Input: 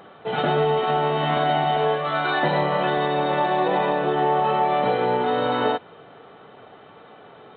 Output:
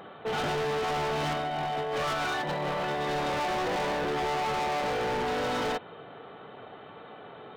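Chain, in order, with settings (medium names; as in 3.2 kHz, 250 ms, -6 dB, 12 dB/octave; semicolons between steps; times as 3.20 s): 1.33–3.08 s: compressor with a negative ratio -25 dBFS, ratio -0.5; overload inside the chain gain 28 dB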